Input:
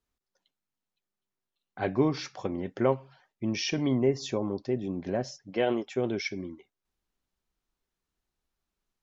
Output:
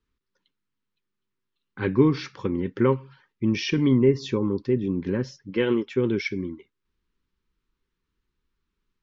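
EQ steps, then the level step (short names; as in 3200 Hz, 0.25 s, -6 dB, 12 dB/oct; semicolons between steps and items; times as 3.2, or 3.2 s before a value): Butterworth band-stop 680 Hz, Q 1.5; LPF 4000 Hz 12 dB/oct; low shelf 340 Hz +3.5 dB; +5.0 dB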